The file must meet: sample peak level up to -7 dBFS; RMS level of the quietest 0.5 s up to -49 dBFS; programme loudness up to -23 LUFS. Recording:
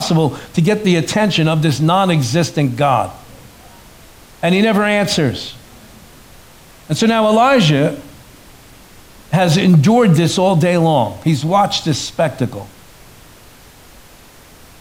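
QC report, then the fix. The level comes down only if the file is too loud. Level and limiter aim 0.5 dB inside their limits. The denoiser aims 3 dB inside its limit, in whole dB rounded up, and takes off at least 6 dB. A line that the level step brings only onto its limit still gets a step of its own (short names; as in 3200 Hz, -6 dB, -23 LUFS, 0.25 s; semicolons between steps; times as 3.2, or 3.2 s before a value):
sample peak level -3.0 dBFS: fail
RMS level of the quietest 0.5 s -42 dBFS: fail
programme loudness -14.5 LUFS: fail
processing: gain -9 dB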